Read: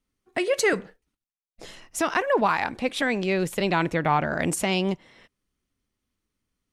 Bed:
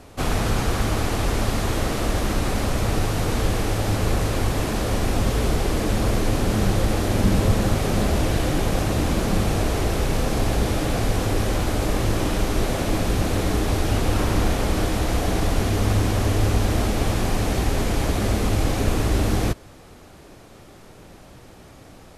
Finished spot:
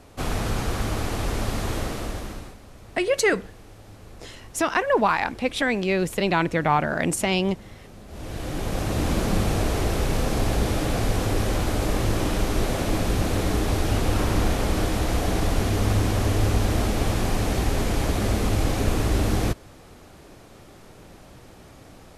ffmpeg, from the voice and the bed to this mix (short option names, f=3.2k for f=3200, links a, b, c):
-filter_complex "[0:a]adelay=2600,volume=1.5dB[a];[1:a]volume=18dB,afade=t=out:st=1.75:d=0.82:silence=0.105925,afade=t=in:st=8.07:d=1.05:silence=0.0794328[b];[a][b]amix=inputs=2:normalize=0"